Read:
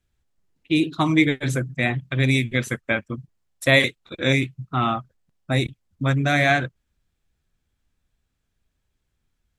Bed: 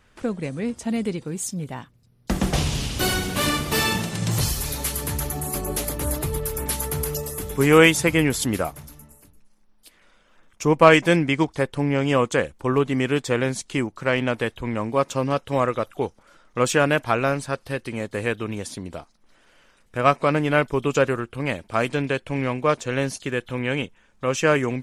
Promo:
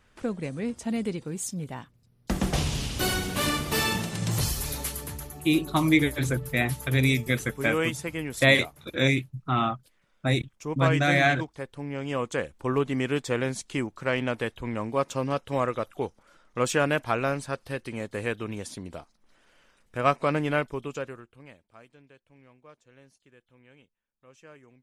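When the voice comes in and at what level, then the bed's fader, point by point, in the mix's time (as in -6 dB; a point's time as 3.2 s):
4.75 s, -3.0 dB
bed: 4.76 s -4 dB
5.32 s -13.5 dB
11.77 s -13.5 dB
12.66 s -5 dB
20.49 s -5 dB
21.9 s -31.5 dB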